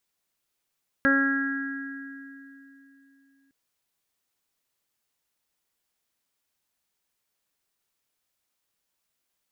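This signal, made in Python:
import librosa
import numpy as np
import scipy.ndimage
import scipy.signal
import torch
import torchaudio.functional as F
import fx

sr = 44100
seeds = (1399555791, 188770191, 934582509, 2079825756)

y = fx.additive(sr, length_s=2.46, hz=274.0, level_db=-21.5, upper_db=(-4.5, -18.5, -18.0, -4.5, 2, -11.5), decay_s=3.5, upper_decays_s=(0.71, 1.71, 1.36, 1.98, 2.79, 2.57))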